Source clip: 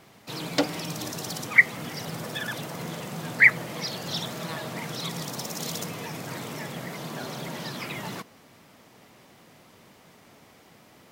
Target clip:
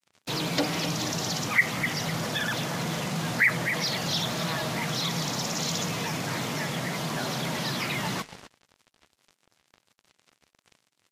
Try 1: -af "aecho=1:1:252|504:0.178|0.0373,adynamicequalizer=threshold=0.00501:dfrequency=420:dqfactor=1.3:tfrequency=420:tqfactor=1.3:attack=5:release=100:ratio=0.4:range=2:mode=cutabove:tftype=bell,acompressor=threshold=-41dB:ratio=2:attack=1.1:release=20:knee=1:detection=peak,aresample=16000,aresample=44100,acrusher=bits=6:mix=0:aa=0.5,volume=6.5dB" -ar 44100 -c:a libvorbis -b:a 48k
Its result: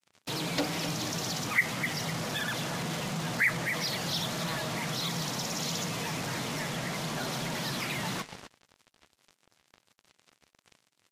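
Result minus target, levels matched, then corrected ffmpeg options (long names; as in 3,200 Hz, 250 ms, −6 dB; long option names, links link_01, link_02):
downward compressor: peak gain reduction +4 dB
-af "aecho=1:1:252|504:0.178|0.0373,adynamicequalizer=threshold=0.00501:dfrequency=420:dqfactor=1.3:tfrequency=420:tqfactor=1.3:attack=5:release=100:ratio=0.4:range=2:mode=cutabove:tftype=bell,acompressor=threshold=-33dB:ratio=2:attack=1.1:release=20:knee=1:detection=peak,aresample=16000,aresample=44100,acrusher=bits=6:mix=0:aa=0.5,volume=6.5dB" -ar 44100 -c:a libvorbis -b:a 48k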